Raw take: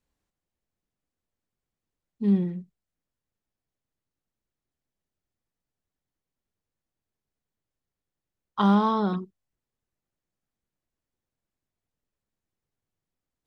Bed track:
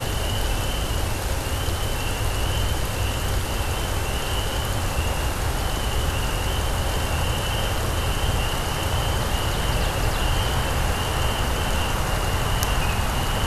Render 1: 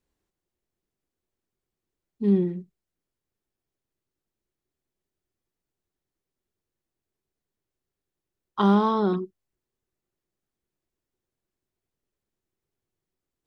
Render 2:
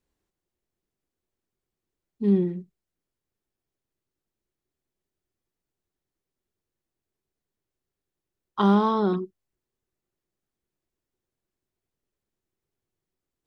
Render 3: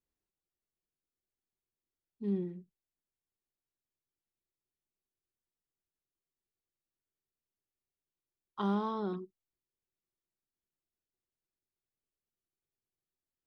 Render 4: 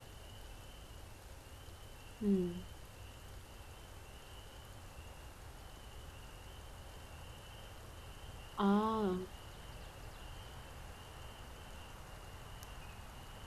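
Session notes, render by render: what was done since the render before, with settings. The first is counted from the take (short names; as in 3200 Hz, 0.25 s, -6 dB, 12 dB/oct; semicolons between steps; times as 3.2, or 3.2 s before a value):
bell 370 Hz +9.5 dB 0.35 oct
nothing audible
gain -12.5 dB
add bed track -28.5 dB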